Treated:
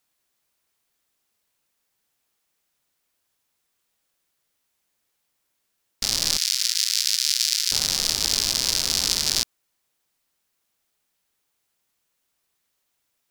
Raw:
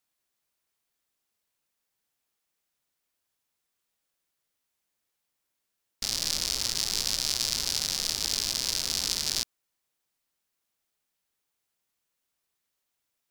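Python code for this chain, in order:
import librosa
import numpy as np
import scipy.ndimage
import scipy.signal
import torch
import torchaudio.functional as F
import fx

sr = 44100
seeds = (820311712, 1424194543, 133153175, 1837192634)

y = fx.cheby2_highpass(x, sr, hz=630.0, order=4, stop_db=50, at=(6.37, 7.72))
y = F.gain(torch.from_numpy(y), 6.5).numpy()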